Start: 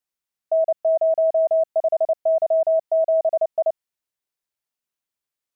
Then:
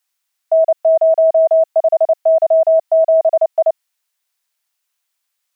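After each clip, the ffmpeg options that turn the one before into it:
ffmpeg -i in.wav -af "highpass=frequency=570:width=0.5412,highpass=frequency=570:width=1.3066,tiltshelf=frequency=720:gain=-5,volume=9dB" out.wav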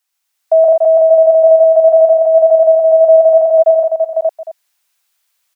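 ffmpeg -i in.wav -filter_complex "[0:a]asplit=2[link_01][link_02];[link_02]aecho=0:1:122|134|427|585|808:0.596|0.562|0.237|0.631|0.133[link_03];[link_01][link_03]amix=inputs=2:normalize=0,dynaudnorm=framelen=220:gausssize=3:maxgain=5dB" out.wav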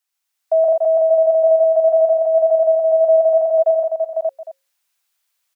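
ffmpeg -i in.wav -af "bandreject=frequency=60:width_type=h:width=6,bandreject=frequency=120:width_type=h:width=6,bandreject=frequency=180:width_type=h:width=6,bandreject=frequency=240:width_type=h:width=6,bandreject=frequency=300:width_type=h:width=6,bandreject=frequency=360:width_type=h:width=6,bandreject=frequency=420:width_type=h:width=6,bandreject=frequency=480:width_type=h:width=6,bandreject=frequency=540:width_type=h:width=6,volume=-6dB" out.wav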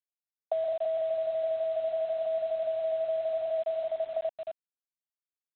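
ffmpeg -i in.wav -af "acompressor=threshold=-23dB:ratio=20,aresample=8000,acrusher=bits=7:mix=0:aa=0.000001,aresample=44100,volume=-4.5dB" out.wav

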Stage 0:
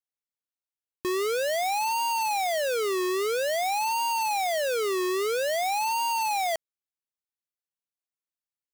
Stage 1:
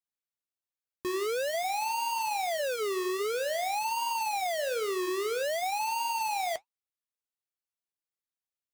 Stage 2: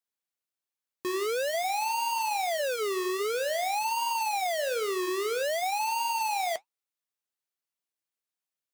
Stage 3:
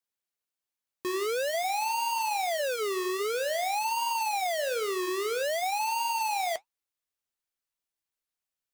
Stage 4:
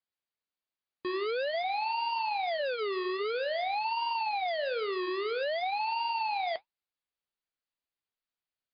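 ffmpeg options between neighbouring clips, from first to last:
ffmpeg -i in.wav -af "flanger=delay=5.4:depth=9.8:regen=-65:speed=1.2:shape=triangular" out.wav
ffmpeg -i in.wav -af "highpass=frequency=210:poles=1,volume=2dB" out.wav
ffmpeg -i in.wav -af "asubboost=boost=2.5:cutoff=86" out.wav
ffmpeg -i in.wav -af "volume=-1.5dB" -ar 11025 -c:a libmp3lame -b:a 48k out.mp3

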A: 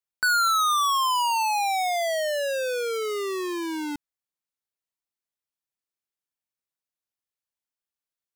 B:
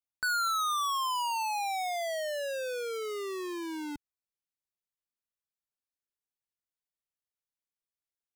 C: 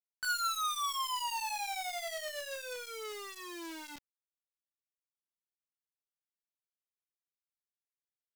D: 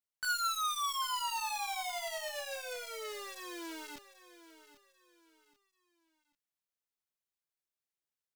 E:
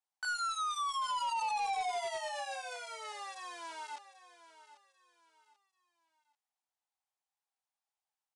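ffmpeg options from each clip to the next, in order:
ffmpeg -i in.wav -af "lowshelf=frequency=120:gain=8.5,volume=-8dB" out.wav
ffmpeg -i in.wav -af "flanger=delay=20:depth=5.1:speed=0.37,acrusher=bits=8:dc=4:mix=0:aa=0.000001,tiltshelf=frequency=920:gain=-5.5,volume=-3.5dB" out.wav
ffmpeg -i in.wav -af "aecho=1:1:789|1578|2367:0.178|0.0605|0.0206" out.wav
ffmpeg -i in.wav -af "highpass=frequency=800:width_type=q:width=5.5,asoftclip=type=hard:threshold=-29.5dB,aresample=22050,aresample=44100,volume=-2.5dB" out.wav

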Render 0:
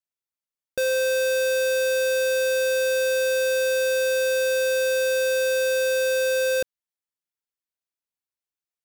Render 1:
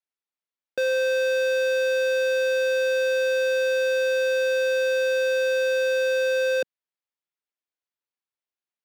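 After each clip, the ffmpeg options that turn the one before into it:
ffmpeg -i in.wav -filter_complex "[0:a]acrossover=split=190 4900:gain=0.178 1 0.178[link_01][link_02][link_03];[link_01][link_02][link_03]amix=inputs=3:normalize=0" out.wav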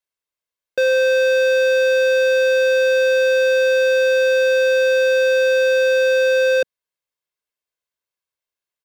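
ffmpeg -i in.wav -af "aecho=1:1:1.9:0.43,volume=4dB" out.wav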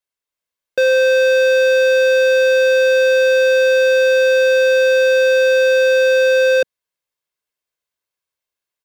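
ffmpeg -i in.wav -af "dynaudnorm=framelen=210:gausssize=3:maxgain=3dB" out.wav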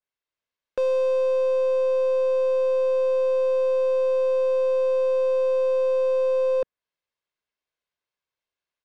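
ffmpeg -i in.wav -af "lowpass=4500,aeval=exprs='(tanh(7.08*val(0)+0.2)-tanh(0.2))/7.08':channel_layout=same,adynamicequalizer=threshold=0.00794:dfrequency=2000:dqfactor=0.7:tfrequency=2000:tqfactor=0.7:attack=5:release=100:ratio=0.375:range=3:mode=cutabove:tftype=highshelf,volume=-1.5dB" out.wav

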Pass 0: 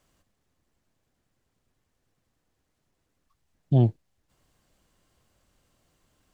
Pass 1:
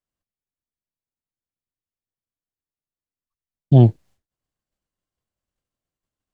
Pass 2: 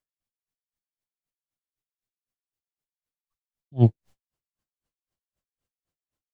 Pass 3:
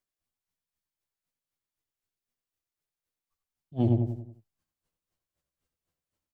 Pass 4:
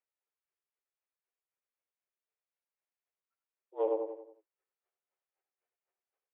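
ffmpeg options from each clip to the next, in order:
ffmpeg -i in.wav -af "agate=range=-33dB:threshold=-51dB:ratio=3:detection=peak,volume=8.5dB" out.wav
ffmpeg -i in.wav -af "acompressor=threshold=-11dB:ratio=6,aeval=exprs='val(0)*pow(10,-39*(0.5-0.5*cos(2*PI*3.9*n/s))/20)':channel_layout=same,volume=3dB" out.wav
ffmpeg -i in.wav -filter_complex "[0:a]asplit=2[link_01][link_02];[link_02]adelay=92,lowpass=frequency=1500:poles=1,volume=-7dB,asplit=2[link_03][link_04];[link_04]adelay=92,lowpass=frequency=1500:poles=1,volume=0.46,asplit=2[link_05][link_06];[link_06]adelay=92,lowpass=frequency=1500:poles=1,volume=0.46,asplit=2[link_07][link_08];[link_08]adelay=92,lowpass=frequency=1500:poles=1,volume=0.46,asplit=2[link_09][link_10];[link_10]adelay=92,lowpass=frequency=1500:poles=1,volume=0.46[link_11];[link_03][link_05][link_07][link_09][link_11]amix=inputs=5:normalize=0[link_12];[link_01][link_12]amix=inputs=2:normalize=0,alimiter=limit=-14.5dB:level=0:latency=1:release=52,asplit=2[link_13][link_14];[link_14]aecho=0:1:12|76:0.668|0.355[link_15];[link_13][link_15]amix=inputs=2:normalize=0" out.wav
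ffmpeg -i in.wav -af "highpass=frequency=180:width_type=q:width=0.5412,highpass=frequency=180:width_type=q:width=1.307,lowpass=frequency=2500:width_type=q:width=0.5176,lowpass=frequency=2500:width_type=q:width=0.7071,lowpass=frequency=2500:width_type=q:width=1.932,afreqshift=210,volume=-3.5dB" out.wav

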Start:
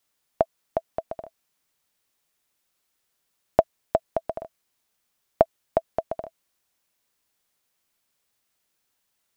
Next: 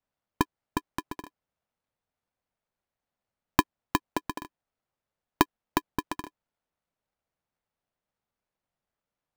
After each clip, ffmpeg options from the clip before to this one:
ffmpeg -i in.wav -af "bandpass=frequency=260:width_type=q:width=0.58:csg=0,aeval=exprs='val(0)*sgn(sin(2*PI*350*n/s))':channel_layout=same" out.wav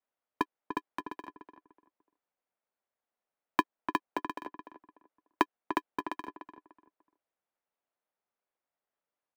ffmpeg -i in.wav -filter_complex "[0:a]acrossover=split=260 3200:gain=0.126 1 0.224[link_01][link_02][link_03];[link_01][link_02][link_03]amix=inputs=3:normalize=0,asplit=2[link_04][link_05];[link_05]adelay=296,lowpass=frequency=1600:poles=1,volume=-8dB,asplit=2[link_06][link_07];[link_07]adelay=296,lowpass=frequency=1600:poles=1,volume=0.27,asplit=2[link_08][link_09];[link_09]adelay=296,lowpass=frequency=1600:poles=1,volume=0.27[link_10];[link_04][link_06][link_08][link_10]amix=inputs=4:normalize=0,volume=-2.5dB" out.wav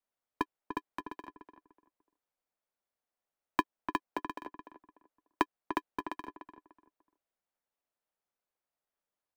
ffmpeg -i in.wav -af "lowshelf=frequency=68:gain=9,volume=-2.5dB" out.wav

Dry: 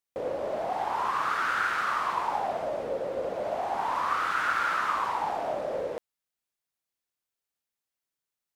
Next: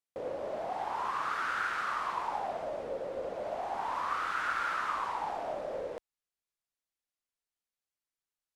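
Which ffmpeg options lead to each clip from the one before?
ffmpeg -i in.wav -af "lowpass=12000,asubboost=boost=2:cutoff=68,volume=-5.5dB" out.wav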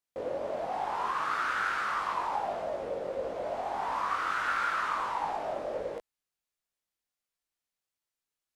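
ffmpeg -i in.wav -af "flanger=delay=19:depth=2.7:speed=1.5,volume=5.5dB" out.wav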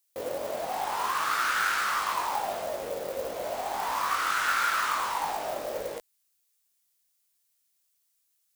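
ffmpeg -i in.wav -af "acrusher=bits=8:mode=log:mix=0:aa=0.000001,crystalizer=i=5:c=0" out.wav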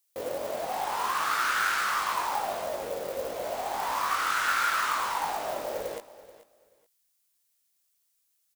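ffmpeg -i in.wav -af "aecho=1:1:432|864:0.141|0.0297" out.wav

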